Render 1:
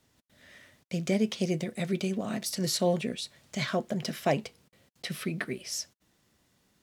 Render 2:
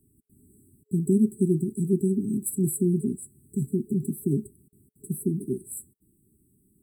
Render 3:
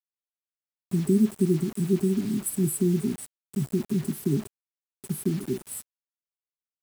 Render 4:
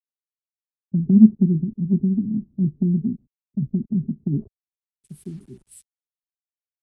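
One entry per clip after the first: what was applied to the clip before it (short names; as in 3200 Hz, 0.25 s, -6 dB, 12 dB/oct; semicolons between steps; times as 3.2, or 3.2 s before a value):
FFT band-reject 420–7700 Hz; gain +7 dB
bit-crush 7-bit
low-pass sweep 240 Hz -> 9900 Hz, 4.32–4.96; RIAA curve playback; three-band expander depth 100%; gain -10 dB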